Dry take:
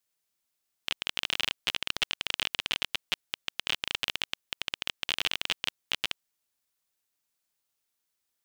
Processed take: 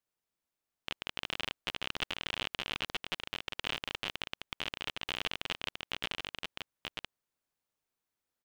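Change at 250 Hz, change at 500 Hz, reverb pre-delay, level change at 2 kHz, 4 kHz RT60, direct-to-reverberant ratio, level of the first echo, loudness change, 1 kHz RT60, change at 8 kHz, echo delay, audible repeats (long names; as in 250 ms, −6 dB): +1.5 dB, +1.0 dB, no reverb audible, −5.0 dB, no reverb audible, no reverb audible, −3.5 dB, −6.5 dB, no reverb audible, −9.5 dB, 933 ms, 1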